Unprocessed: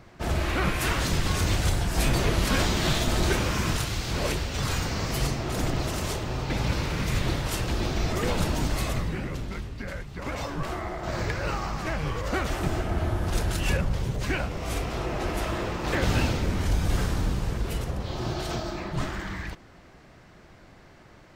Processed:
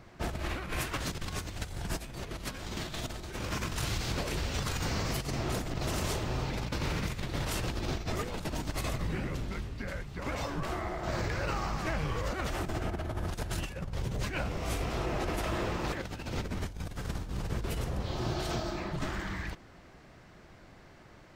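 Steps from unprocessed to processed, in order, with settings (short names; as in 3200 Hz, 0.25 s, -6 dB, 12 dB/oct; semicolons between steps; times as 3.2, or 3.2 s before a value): negative-ratio compressor -28 dBFS, ratio -0.5; gain -5 dB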